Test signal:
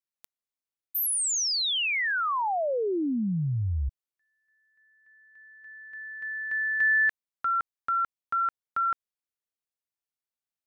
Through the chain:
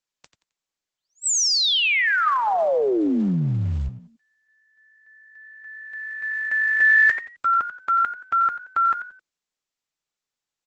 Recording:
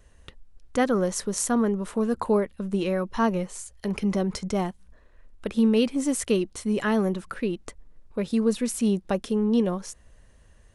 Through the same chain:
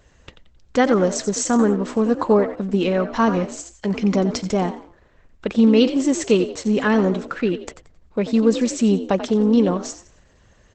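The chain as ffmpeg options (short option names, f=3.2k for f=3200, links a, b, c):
-filter_complex "[0:a]lowpass=10k,lowshelf=f=61:g=-11,asplit=2[a][b];[b]asplit=3[c][d][e];[c]adelay=88,afreqshift=53,volume=-12dB[f];[d]adelay=176,afreqshift=106,volume=-21.6dB[g];[e]adelay=264,afreqshift=159,volume=-31.3dB[h];[f][g][h]amix=inputs=3:normalize=0[i];[a][i]amix=inputs=2:normalize=0,volume=7dB" -ar 48000 -c:a libopus -b:a 12k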